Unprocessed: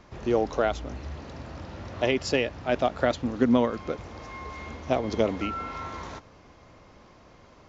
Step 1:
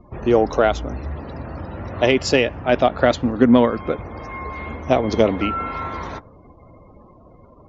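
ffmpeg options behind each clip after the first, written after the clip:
ffmpeg -i in.wav -af "afftdn=noise_reduction=33:noise_floor=-50,acontrast=27,volume=3.5dB" out.wav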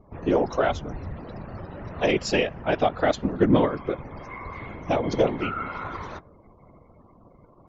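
ffmpeg -i in.wav -af "afftfilt=real='hypot(re,im)*cos(2*PI*random(0))':imag='hypot(re,im)*sin(2*PI*random(1))':win_size=512:overlap=0.75" out.wav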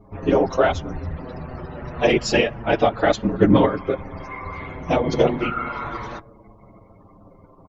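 ffmpeg -i in.wav -filter_complex "[0:a]asplit=2[link_01][link_02];[link_02]adelay=7,afreqshift=-0.29[link_03];[link_01][link_03]amix=inputs=2:normalize=1,volume=7.5dB" out.wav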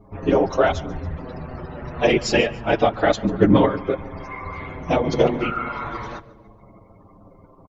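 ffmpeg -i in.wav -af "aecho=1:1:143|286|429:0.0891|0.0383|0.0165" out.wav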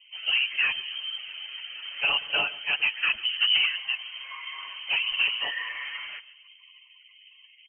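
ffmpeg -i in.wav -af "asoftclip=type=tanh:threshold=-10dB,lowpass=frequency=2700:width_type=q:width=0.5098,lowpass=frequency=2700:width_type=q:width=0.6013,lowpass=frequency=2700:width_type=q:width=0.9,lowpass=frequency=2700:width_type=q:width=2.563,afreqshift=-3200,volume=-6dB" out.wav

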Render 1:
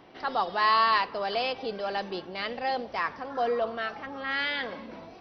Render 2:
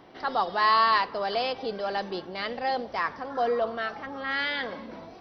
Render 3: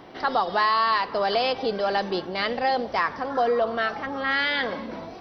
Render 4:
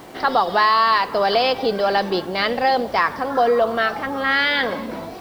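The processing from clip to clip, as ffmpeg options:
ffmpeg -i in.wav -af "equalizer=frequency=2600:width_type=o:width=0.4:gain=-4.5,volume=1.5dB" out.wav
ffmpeg -i in.wav -af "acompressor=threshold=-25dB:ratio=6,volume=6.5dB" out.wav
ffmpeg -i in.wav -af "acrusher=bits=8:mix=0:aa=0.000001,volume=5.5dB" out.wav

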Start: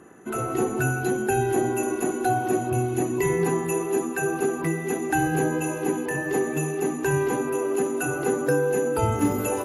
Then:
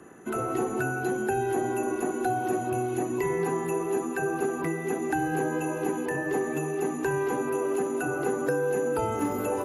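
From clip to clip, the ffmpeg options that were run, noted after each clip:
ffmpeg -i in.wav -filter_complex "[0:a]acrossover=split=220|570|1700[link_01][link_02][link_03][link_04];[link_01]acompressor=threshold=-40dB:ratio=4[link_05];[link_02]acompressor=threshold=-29dB:ratio=4[link_06];[link_03]acompressor=threshold=-30dB:ratio=4[link_07];[link_04]acompressor=threshold=-43dB:ratio=4[link_08];[link_05][link_06][link_07][link_08]amix=inputs=4:normalize=0" out.wav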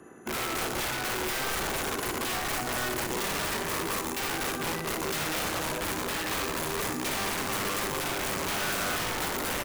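ffmpeg -i in.wav -af "aeval=exprs='(mod(17.8*val(0)+1,2)-1)/17.8':channel_layout=same,aecho=1:1:60|120|180|240|300|360:0.335|0.178|0.0941|0.0499|0.0264|0.014,volume=-1.5dB" out.wav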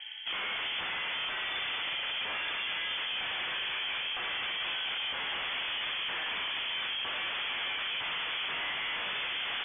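ffmpeg -i in.wav -af "asoftclip=type=hard:threshold=-39.5dB,lowpass=frequency=3000:width_type=q:width=0.5098,lowpass=frequency=3000:width_type=q:width=0.6013,lowpass=frequency=3000:width_type=q:width=0.9,lowpass=frequency=3000:width_type=q:width=2.563,afreqshift=-3500,volume=6.5dB" out.wav

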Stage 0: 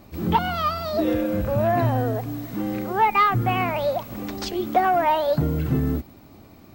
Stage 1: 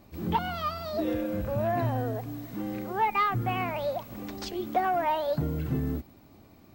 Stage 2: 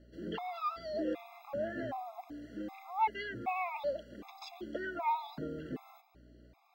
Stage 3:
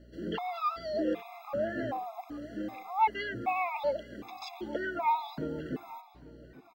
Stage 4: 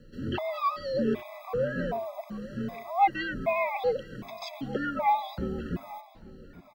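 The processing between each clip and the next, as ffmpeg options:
ffmpeg -i in.wav -af "bandreject=frequency=1300:width=27,volume=-7dB" out.wav
ffmpeg -i in.wav -filter_complex "[0:a]acrossover=split=230 5300:gain=0.0708 1 0.224[link_01][link_02][link_03];[link_01][link_02][link_03]amix=inputs=3:normalize=0,aeval=exprs='val(0)+0.00178*(sin(2*PI*60*n/s)+sin(2*PI*2*60*n/s)/2+sin(2*PI*3*60*n/s)/3+sin(2*PI*4*60*n/s)/4+sin(2*PI*5*60*n/s)/5)':channel_layout=same,afftfilt=real='re*gt(sin(2*PI*1.3*pts/sr)*(1-2*mod(floor(b*sr/1024/680),2)),0)':imag='im*gt(sin(2*PI*1.3*pts/sr)*(1-2*mod(floor(b*sr/1024/680),2)),0)':win_size=1024:overlap=0.75,volume=-3.5dB" out.wav
ffmpeg -i in.wav -filter_complex "[0:a]asplit=2[link_01][link_02];[link_02]adelay=842,lowpass=frequency=2300:poles=1,volume=-18dB,asplit=2[link_03][link_04];[link_04]adelay=842,lowpass=frequency=2300:poles=1,volume=0.4,asplit=2[link_05][link_06];[link_06]adelay=842,lowpass=frequency=2300:poles=1,volume=0.4[link_07];[link_01][link_03][link_05][link_07]amix=inputs=4:normalize=0,volume=4.5dB" out.wav
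ffmpeg -i in.wav -af "afreqshift=-84,volume=3.5dB" out.wav

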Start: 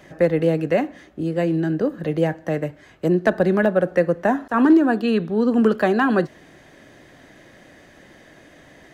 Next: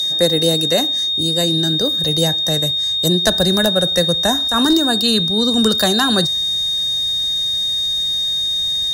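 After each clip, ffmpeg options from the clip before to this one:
ffmpeg -i in.wav -af "aeval=exprs='val(0)+0.02*sin(2*PI*3700*n/s)':channel_layout=same,aexciter=amount=14:drive=5.4:freq=3700,asubboost=boost=7:cutoff=110,volume=1.5dB" out.wav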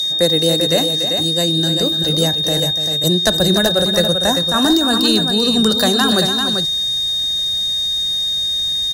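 ffmpeg -i in.wav -af "aecho=1:1:290|392:0.316|0.473" out.wav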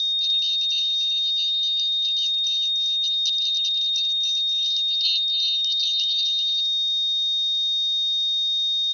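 ffmpeg -i in.wav -af "asuperpass=centerf=4100:order=20:qfactor=1.2,volume=-3.5dB" out.wav

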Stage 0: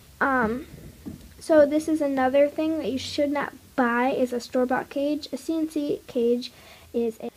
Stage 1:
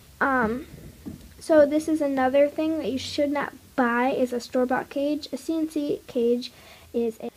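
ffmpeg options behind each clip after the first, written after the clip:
ffmpeg -i in.wav -af anull out.wav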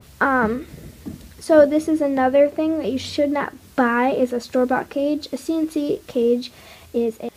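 ffmpeg -i in.wav -af "adynamicequalizer=threshold=0.0126:dfrequency=1900:dqfactor=0.7:tfrequency=1900:tqfactor=0.7:attack=5:release=100:ratio=0.375:range=3:mode=cutabove:tftype=highshelf,volume=4.5dB" out.wav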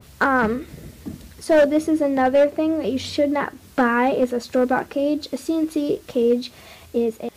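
ffmpeg -i in.wav -af "volume=10.5dB,asoftclip=hard,volume=-10.5dB" out.wav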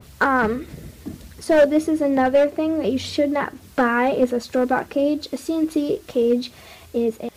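ffmpeg -i in.wav -af "aphaser=in_gain=1:out_gain=1:delay=2.9:decay=0.22:speed=1.4:type=sinusoidal" out.wav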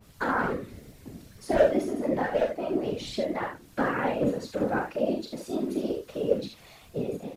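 ffmpeg -i in.wav -af "aecho=1:1:40|72:0.531|0.473,flanger=delay=8.6:depth=7.5:regen=49:speed=2:shape=sinusoidal,afftfilt=real='hypot(re,im)*cos(2*PI*random(0))':imag='hypot(re,im)*sin(2*PI*random(1))':win_size=512:overlap=0.75" out.wav

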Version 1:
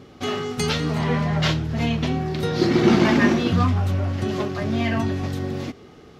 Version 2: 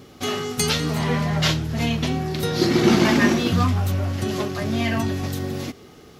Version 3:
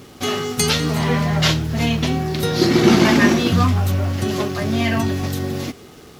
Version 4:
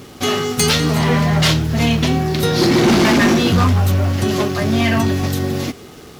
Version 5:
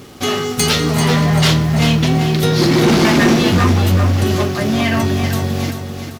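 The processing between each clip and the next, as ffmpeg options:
ffmpeg -i in.wav -af "aemphasis=mode=production:type=50fm" out.wav
ffmpeg -i in.wav -af "acrusher=bits=7:mix=0:aa=0.5,volume=3.5dB" out.wav
ffmpeg -i in.wav -af "volume=13.5dB,asoftclip=hard,volume=-13.5dB,volume=4dB" out.wav
ffmpeg -i in.wav -af "aecho=1:1:390|780|1170|1560|1950:0.422|0.173|0.0709|0.0291|0.0119" out.wav

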